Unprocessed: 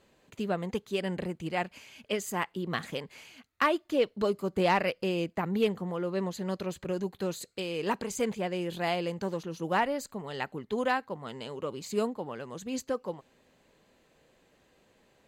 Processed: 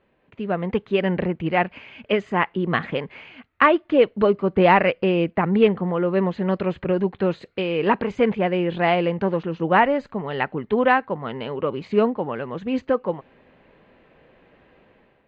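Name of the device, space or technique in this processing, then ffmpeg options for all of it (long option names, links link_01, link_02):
action camera in a waterproof case: -af "lowpass=frequency=2700:width=0.5412,lowpass=frequency=2700:width=1.3066,highshelf=frequency=8600:gain=8,dynaudnorm=framelen=220:gausssize=5:maxgain=11dB" -ar 24000 -c:a aac -b:a 96k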